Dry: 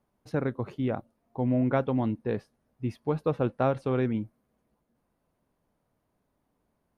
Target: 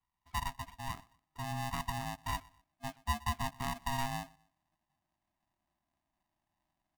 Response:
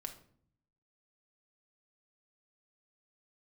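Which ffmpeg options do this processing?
-filter_complex "[0:a]asubboost=boost=7:cutoff=200,afreqshift=92,asplit=3[a][b][c];[a]bandpass=f=530:t=q:w=8,volume=0dB[d];[b]bandpass=f=1.84k:t=q:w=8,volume=-6dB[e];[c]bandpass=f=2.48k:t=q:w=8,volume=-9dB[f];[d][e][f]amix=inputs=3:normalize=0,asplit=2[g][h];[h]aecho=0:1:122|244:0.0631|0.0233[i];[g][i]amix=inputs=2:normalize=0,aeval=exprs='val(0)*sgn(sin(2*PI*470*n/s))':c=same"

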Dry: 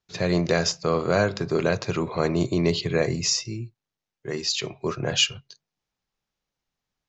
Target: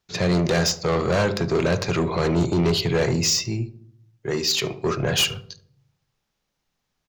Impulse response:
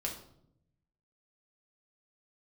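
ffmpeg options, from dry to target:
-filter_complex "[0:a]asoftclip=type=tanh:threshold=-23dB,asplit=2[a][b];[b]adelay=72,lowpass=f=980:p=1,volume=-12dB,asplit=2[c][d];[d]adelay=72,lowpass=f=980:p=1,volume=0.51,asplit=2[e][f];[f]adelay=72,lowpass=f=980:p=1,volume=0.51,asplit=2[g][h];[h]adelay=72,lowpass=f=980:p=1,volume=0.51,asplit=2[i][j];[j]adelay=72,lowpass=f=980:p=1,volume=0.51[k];[a][c][e][g][i][k]amix=inputs=6:normalize=0,asplit=2[l][m];[1:a]atrim=start_sample=2205[n];[m][n]afir=irnorm=-1:irlink=0,volume=-18dB[o];[l][o]amix=inputs=2:normalize=0,volume=6dB"

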